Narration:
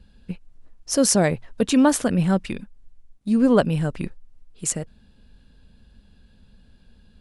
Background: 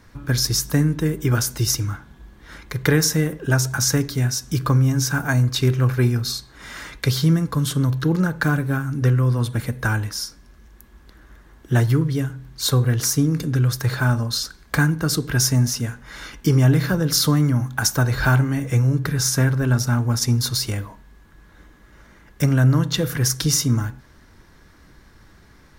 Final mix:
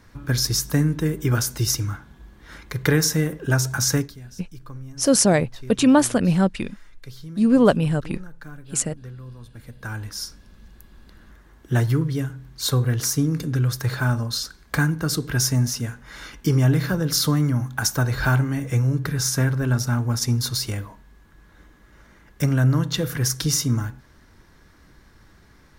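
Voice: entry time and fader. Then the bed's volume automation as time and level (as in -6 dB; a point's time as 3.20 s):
4.10 s, +1.5 dB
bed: 3.99 s -1.5 dB
4.20 s -21 dB
9.47 s -21 dB
10.24 s -2.5 dB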